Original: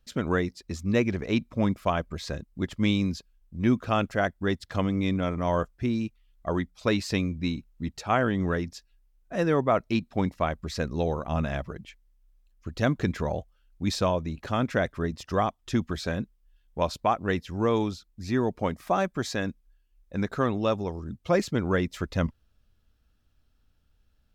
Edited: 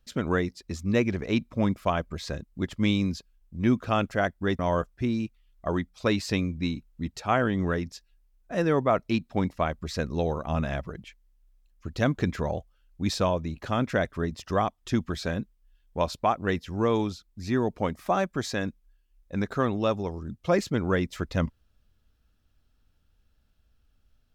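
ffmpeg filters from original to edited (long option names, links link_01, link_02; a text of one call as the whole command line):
ffmpeg -i in.wav -filter_complex "[0:a]asplit=2[link_01][link_02];[link_01]atrim=end=4.592[link_03];[link_02]atrim=start=5.398[link_04];[link_03][link_04]acrossfade=duration=0.004:curve1=hsin:curve2=hsin" out.wav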